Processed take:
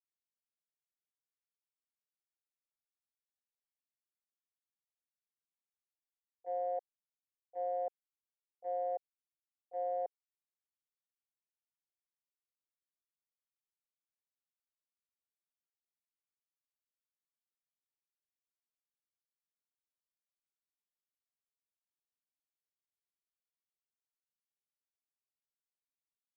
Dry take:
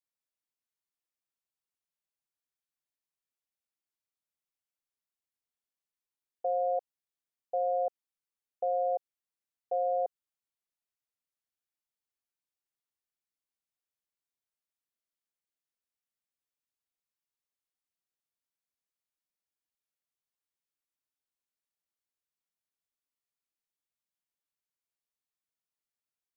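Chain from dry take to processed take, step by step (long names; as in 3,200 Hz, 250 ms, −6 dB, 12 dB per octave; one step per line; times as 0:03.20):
noise gate −27 dBFS, range −29 dB
level +2.5 dB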